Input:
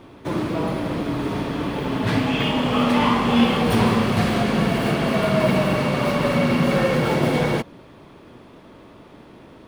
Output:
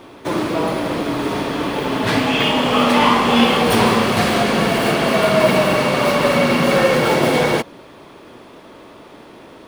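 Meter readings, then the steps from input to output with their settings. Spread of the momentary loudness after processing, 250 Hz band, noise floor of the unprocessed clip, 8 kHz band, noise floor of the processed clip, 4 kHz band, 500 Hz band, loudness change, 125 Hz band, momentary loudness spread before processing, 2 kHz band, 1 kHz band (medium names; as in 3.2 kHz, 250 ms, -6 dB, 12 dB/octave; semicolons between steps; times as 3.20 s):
8 LU, +1.5 dB, -46 dBFS, +9.5 dB, -42 dBFS, +7.5 dB, +6.0 dB, +4.5 dB, -1.5 dB, 7 LU, +6.5 dB, +6.5 dB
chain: tone controls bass -9 dB, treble +3 dB; trim +6.5 dB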